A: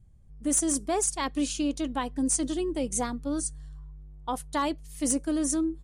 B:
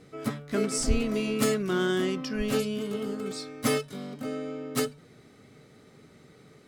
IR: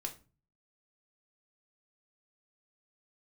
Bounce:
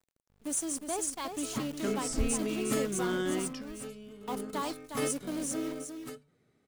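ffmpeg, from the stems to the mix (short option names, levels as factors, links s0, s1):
-filter_complex "[0:a]highpass=f=250:p=1,bandreject=f=1900:w=8.9,acrusher=bits=7:dc=4:mix=0:aa=0.000001,volume=0.447,asplit=3[s0][s1][s2];[s1]volume=0.422[s3];[1:a]equalizer=f=4700:w=1.5:g=-4,adelay=1300,volume=0.531[s4];[s2]apad=whole_len=351761[s5];[s4][s5]sidechaingate=range=0.282:threshold=0.002:ratio=16:detection=peak[s6];[s3]aecho=0:1:359:1[s7];[s0][s6][s7]amix=inputs=3:normalize=0"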